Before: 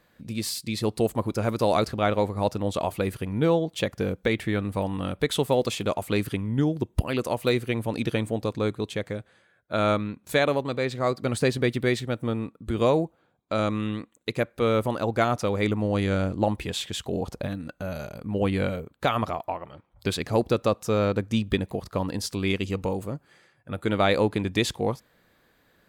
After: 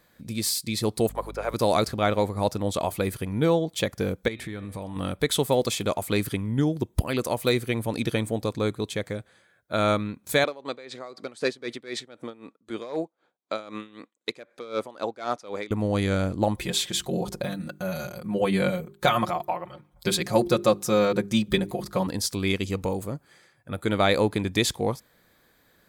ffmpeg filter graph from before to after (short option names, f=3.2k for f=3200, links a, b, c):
-filter_complex "[0:a]asettb=1/sr,asplit=3[a][b][c];[a]atrim=end=1.094[d];[b]atrim=start=1.09:end=1.54,asetpts=PTS-STARTPTS,afade=t=in:d=0.004:c=qsin,afade=t=out:st=0.446:d=0.004:c=qsin,highpass=f=450:w=0.5412,highpass=f=450:w=1.3066,acrossover=split=3100[e][f];[f]acompressor=threshold=-56dB:ratio=4:attack=1:release=60[g];[e][g]amix=inputs=2:normalize=0,aeval=exprs='val(0)+0.01*(sin(2*PI*50*n/s)+sin(2*PI*2*50*n/s)/2+sin(2*PI*3*50*n/s)/3+sin(2*PI*4*50*n/s)/4+sin(2*PI*5*50*n/s)/5)':c=same[h];[c]atrim=start=1.536[i];[d][h]acrossfade=d=0.004:c1=hsin:c2=qsin[j];[j][i]acrossfade=d=0.004:c1=qsin:c2=hsin,asettb=1/sr,asplit=3[k][l][m];[k]atrim=end=4.284[n];[l]atrim=start=4.28:end=4.96,asetpts=PTS-STARTPTS,afade=t=in:d=0.004:c=qsin,afade=t=out:st=0.676:d=0.004:c=qsin,lowpass=12k,bandreject=f=123.9:t=h:w=4,bandreject=f=247.8:t=h:w=4,bandreject=f=371.7:t=h:w=4,bandreject=f=495.6:t=h:w=4,bandreject=f=619.5:t=h:w=4,bandreject=f=743.4:t=h:w=4,bandreject=f=867.3:t=h:w=4,bandreject=f=991.2:t=h:w=4,bandreject=f=1.1151k:t=h:w=4,bandreject=f=1.239k:t=h:w=4,bandreject=f=1.3629k:t=h:w=4,bandreject=f=1.4868k:t=h:w=4,bandreject=f=1.6107k:t=h:w=4,bandreject=f=1.7346k:t=h:w=4,bandreject=f=1.8585k:t=h:w=4,bandreject=f=1.9824k:t=h:w=4,bandreject=f=2.1063k:t=h:w=4,bandreject=f=2.2302k:t=h:w=4,bandreject=f=2.3541k:t=h:w=4,bandreject=f=2.478k:t=h:w=4,bandreject=f=2.6019k:t=h:w=4,bandreject=f=2.7258k:t=h:w=4,bandreject=f=2.8497k:t=h:w=4,bandreject=f=2.9736k:t=h:w=4,bandreject=f=3.0975k:t=h:w=4,bandreject=f=3.2214k:t=h:w=4,bandreject=f=3.3453k:t=h:w=4,bandreject=f=3.4692k:t=h:w=4,bandreject=f=3.5931k:t=h:w=4,bandreject=f=3.717k:t=h:w=4,bandreject=f=3.8409k:t=h:w=4,bandreject=f=3.9648k:t=h:w=4,bandreject=f=4.0887k:t=h:w=4,acompressor=threshold=-32dB:ratio=4:attack=3.2:release=140:knee=1:detection=peak[o];[m]atrim=start=4.956[p];[n][o]acrossfade=d=0.004:c1=hsin:c2=qsin[q];[q][p]acrossfade=d=0.004:c1=qsin:c2=hsin,asettb=1/sr,asplit=3[r][s][t];[r]atrim=end=10.444[u];[s]atrim=start=10.44:end=15.71,asetpts=PTS-STARTPTS,afade=t=in:d=0.004:c=qsin,afade=t=out:st=5.266:d=0.004:c=qsin,asoftclip=type=hard:threshold=-14.5dB,highpass=310,lowpass=6.6k,aeval=exprs='val(0)*pow(10,-18*(0.5-0.5*cos(2*PI*3.9*n/s))/20)':c=same[v];[t]atrim=start=15.706[w];[u][v]acrossfade=d=0.004:c1=hsin:c2=qsin[x];[x][w]acrossfade=d=0.004:c1=qsin:c2=hsin,asettb=1/sr,asplit=3[y][z][aa];[y]atrim=end=16.564[ab];[z]atrim=start=16.56:end=22.07,asetpts=PTS-STARTPTS,afade=t=in:d=0.004:c=qsin,afade=t=out:st=5.506:d=0.004:c=qsin,bandreject=f=50:t=h:w=6,bandreject=f=100:t=h:w=6,bandreject=f=150:t=h:w=6,bandreject=f=200:t=h:w=6,bandreject=f=250:t=h:w=6,bandreject=f=300:t=h:w=6,bandreject=f=350:t=h:w=6,bandreject=f=400:t=h:w=6,bandreject=f=450:t=h:w=6,aecho=1:1:5.6:0.82,atrim=end_sample=242991[ac];[aa]atrim=start=22.066[ad];[ab][ac]acrossfade=d=0.004:c1=hsin:c2=qsin[ae];[ae][ad]acrossfade=d=0.004:c1=qsin:c2=hsin,highshelf=f=4.8k:g=7.5,bandreject=f=2.8k:w=11"